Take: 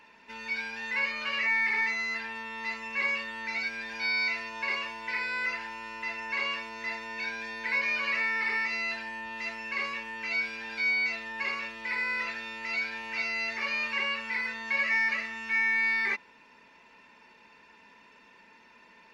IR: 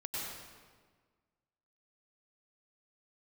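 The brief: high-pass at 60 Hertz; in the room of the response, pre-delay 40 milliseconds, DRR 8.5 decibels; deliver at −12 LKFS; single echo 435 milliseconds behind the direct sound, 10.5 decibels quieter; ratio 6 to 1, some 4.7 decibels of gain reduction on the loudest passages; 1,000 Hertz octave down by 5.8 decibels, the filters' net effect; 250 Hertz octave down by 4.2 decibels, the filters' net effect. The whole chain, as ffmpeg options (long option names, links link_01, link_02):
-filter_complex "[0:a]highpass=60,equalizer=frequency=250:width_type=o:gain=-4.5,equalizer=frequency=1000:width_type=o:gain=-6.5,acompressor=threshold=-30dB:ratio=6,aecho=1:1:435:0.299,asplit=2[link_01][link_02];[1:a]atrim=start_sample=2205,adelay=40[link_03];[link_02][link_03]afir=irnorm=-1:irlink=0,volume=-10.5dB[link_04];[link_01][link_04]amix=inputs=2:normalize=0,volume=20.5dB"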